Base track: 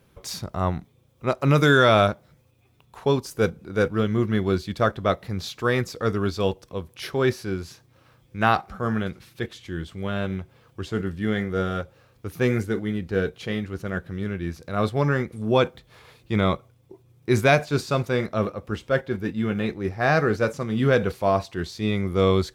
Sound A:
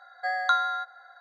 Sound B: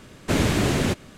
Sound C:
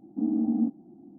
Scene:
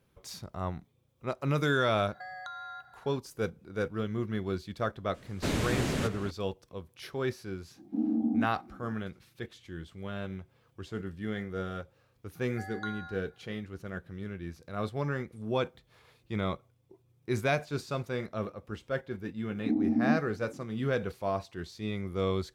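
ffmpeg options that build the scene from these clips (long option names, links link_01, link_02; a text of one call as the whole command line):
ffmpeg -i bed.wav -i cue0.wav -i cue1.wav -i cue2.wav -filter_complex "[1:a]asplit=2[link_01][link_02];[3:a]asplit=2[link_03][link_04];[0:a]volume=-10.5dB[link_05];[link_01]acompressor=threshold=-34dB:ratio=6:attack=3.2:release=140:knee=1:detection=peak[link_06];[2:a]asplit=2[link_07][link_08];[link_08]adelay=367.3,volume=-11dB,highshelf=frequency=4000:gain=-8.27[link_09];[link_07][link_09]amix=inputs=2:normalize=0[link_10];[link_02]afreqshift=26[link_11];[link_06]atrim=end=1.2,asetpts=PTS-STARTPTS,volume=-6dB,afade=type=in:duration=0.004:curve=hsin,afade=type=out:start_time=1.196:duration=0.004:curve=hsin,adelay=1970[link_12];[link_10]atrim=end=1.17,asetpts=PTS-STARTPTS,volume=-9dB,afade=type=in:duration=0.004:curve=hsin,afade=type=out:start_time=1.166:duration=0.004:curve=hsin,adelay=5140[link_13];[link_03]atrim=end=1.18,asetpts=PTS-STARTPTS,volume=-3dB,afade=type=in:duration=0.004:curve=hsin,afade=type=out:start_time=1.176:duration=0.004:curve=hsin,adelay=7760[link_14];[link_11]atrim=end=1.2,asetpts=PTS-STARTPTS,volume=-16dB,afade=type=in:duration=0.004:curve=hsin,afade=type=out:start_time=1.196:duration=0.004:curve=hsin,adelay=12340[link_15];[link_04]atrim=end=1.18,asetpts=PTS-STARTPTS,volume=-1.5dB,afade=type=in:duration=0.004:curve=hsin,afade=type=out:start_time=1.176:duration=0.004:curve=hsin,adelay=19480[link_16];[link_05][link_12][link_13][link_14][link_15][link_16]amix=inputs=6:normalize=0" out.wav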